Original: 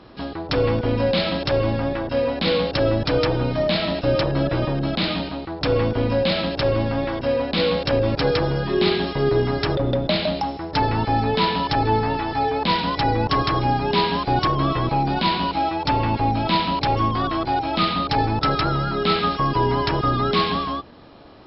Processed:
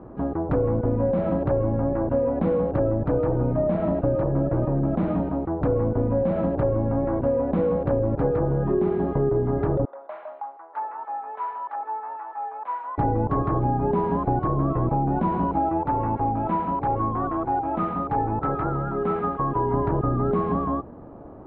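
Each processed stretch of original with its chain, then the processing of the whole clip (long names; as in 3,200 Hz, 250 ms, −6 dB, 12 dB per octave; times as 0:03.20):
0:09.85–0:12.98: four-pole ladder high-pass 800 Hz, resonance 25% + high-frequency loss of the air 230 metres
0:15.83–0:19.74: low-pass filter 3,700 Hz + low-shelf EQ 470 Hz −9.5 dB + notch filter 620 Hz
whole clip: Bessel low-pass filter 790 Hz, order 4; downward compressor, threshold −24 dBFS; level +5 dB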